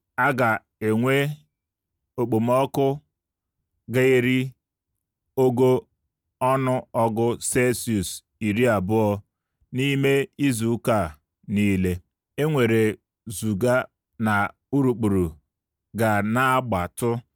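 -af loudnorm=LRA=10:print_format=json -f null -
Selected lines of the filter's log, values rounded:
"input_i" : "-23.0",
"input_tp" : "-8.4",
"input_lra" : "1.1",
"input_thresh" : "-33.4",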